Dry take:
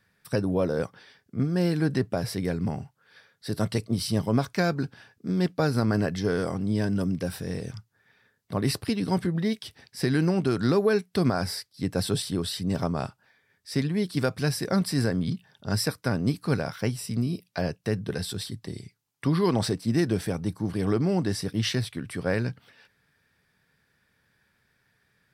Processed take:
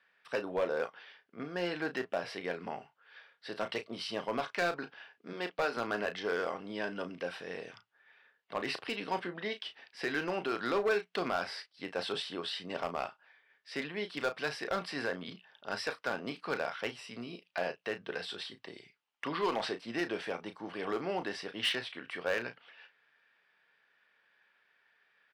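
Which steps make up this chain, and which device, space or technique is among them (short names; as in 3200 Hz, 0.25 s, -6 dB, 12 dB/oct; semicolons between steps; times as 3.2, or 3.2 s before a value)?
5.33–5.77 HPF 230 Hz; megaphone (BPF 610–2800 Hz; bell 2900 Hz +7 dB 0.46 oct; hard clip -25 dBFS, distortion -14 dB; doubler 34 ms -10 dB)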